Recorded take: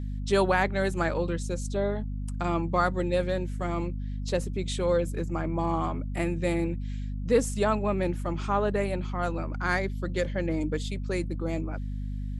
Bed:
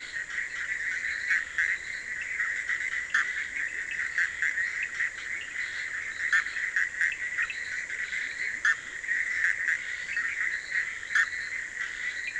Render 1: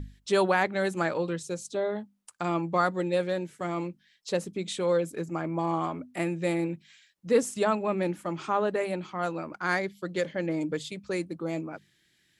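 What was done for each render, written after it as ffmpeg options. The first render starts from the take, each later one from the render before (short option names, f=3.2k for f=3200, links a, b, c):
-af "bandreject=f=50:t=h:w=6,bandreject=f=100:t=h:w=6,bandreject=f=150:t=h:w=6,bandreject=f=200:t=h:w=6,bandreject=f=250:t=h:w=6"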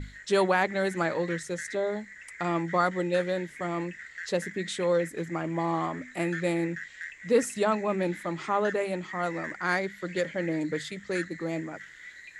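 -filter_complex "[1:a]volume=-13dB[a];[0:a][a]amix=inputs=2:normalize=0"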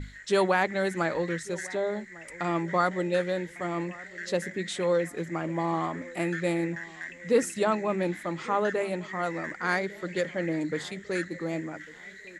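-filter_complex "[0:a]asplit=2[a][b];[b]adelay=1150,lowpass=f=1k:p=1,volume=-19.5dB,asplit=2[c][d];[d]adelay=1150,lowpass=f=1k:p=1,volume=0.5,asplit=2[e][f];[f]adelay=1150,lowpass=f=1k:p=1,volume=0.5,asplit=2[g][h];[h]adelay=1150,lowpass=f=1k:p=1,volume=0.5[i];[a][c][e][g][i]amix=inputs=5:normalize=0"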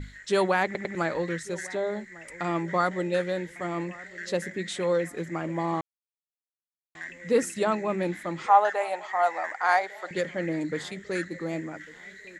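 -filter_complex "[0:a]asettb=1/sr,asplit=3[a][b][c];[a]atrim=end=8.464[d];[b]atrim=start=8.46:end=10.11,asetpts=PTS-STARTPTS,afade=t=in:d=0.004:c=qsin,afade=t=out:st=1.646:d=0.004:c=qsin,highpass=f=770:t=q:w=4.9[e];[c]atrim=start=10.106[f];[d][e]acrossfade=d=0.004:c1=hsin:c2=qsin[g];[g][f]acrossfade=d=0.004:c1=qsin:c2=hsin,asplit=6[h][i][j][k][l][m];[h]atrim=end=0.752[n];[i]atrim=start=0.648:end=0.752[o];[j]atrim=start=0.648:end=0.752[p];[k]atrim=start=0.948:end=5.81,asetpts=PTS-STARTPTS,afade=t=out:st=4.858:d=0.004:c=hsin[q];[l]atrim=start=5.81:end=6.95,asetpts=PTS-STARTPTS,volume=0[r];[m]atrim=start=6.95,asetpts=PTS-STARTPTS,afade=t=in:d=0.004:c=hsin[s];[n][o]acrossfade=d=0.004:c1=hsin:c2=hsin[t];[t][p]acrossfade=d=0.004:c1=hsin:c2=hsin[u];[q][r][s]concat=n=3:v=0:a=1[v];[u][v]acrossfade=d=0.004:c1=hsin:c2=hsin"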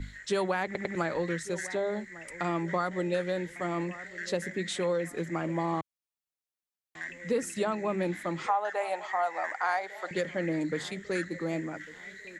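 -filter_complex "[0:a]acrossover=split=120[a][b];[b]acompressor=threshold=-26dB:ratio=4[c];[a][c]amix=inputs=2:normalize=0"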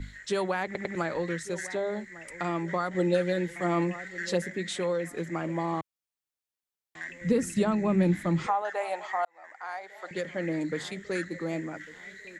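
-filter_complex "[0:a]asettb=1/sr,asplit=3[a][b][c];[a]atrim=end=2.944[d];[b]atrim=start=2.94:end=4.42,asetpts=PTS-STARTPTS,afade=t=in:d=0.004:c=qsin,afade=t=out:st=1.476:d=0.004:c=qsin,aecho=1:1:5.9:0.93,atrim=end_sample=65268[e];[c]atrim=start=4.416[f];[d][e]acrossfade=d=0.004:c1=hsin:c2=qsin[g];[g][f]acrossfade=d=0.004:c1=qsin:c2=hsin,asettb=1/sr,asplit=3[h][i][j];[h]atrim=end=7.214[k];[i]atrim=start=7.21:end=8.62,asetpts=PTS-STARTPTS,afade=t=in:d=0.004:c=qsin,afade=t=out:st=1.406:d=0.004:c=qsin,bass=f=250:g=15,treble=f=4k:g=1[l];[j]atrim=start=8.616[m];[k][l]acrossfade=d=0.004:c1=hsin:c2=qsin[n];[n][m]acrossfade=d=0.004:c1=qsin:c2=hsin,asplit=2[o][p];[o]atrim=end=9.25,asetpts=PTS-STARTPTS,afade=t=out:st=9.246:d=0.004:c=hsin[q];[p]atrim=start=9.25,asetpts=PTS-STARTPTS,afade=t=in:d=1.24[r];[q][r]concat=n=2:v=0:a=1"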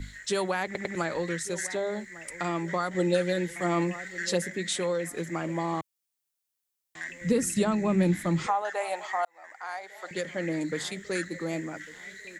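-af "highshelf=f=4.6k:g=10"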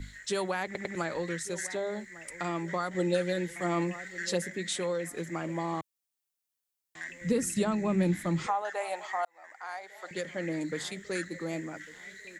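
-af "volume=-3dB"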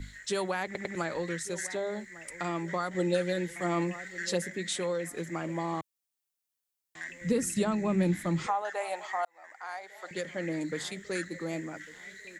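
-af anull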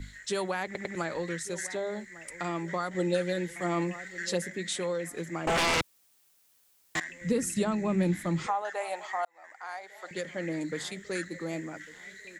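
-filter_complex "[0:a]asettb=1/sr,asplit=3[a][b][c];[a]atrim=end=5.474[d];[b]atrim=start=5.47:end=7,asetpts=PTS-STARTPTS,afade=t=in:d=0.004:c=qsin,afade=t=out:st=1.526:d=0.004:c=qsin,aeval=exprs='0.075*sin(PI/2*6.31*val(0)/0.075)':c=same[e];[c]atrim=start=6.996[f];[d][e]acrossfade=d=0.004:c1=hsin:c2=qsin[g];[g][f]acrossfade=d=0.004:c1=qsin:c2=hsin"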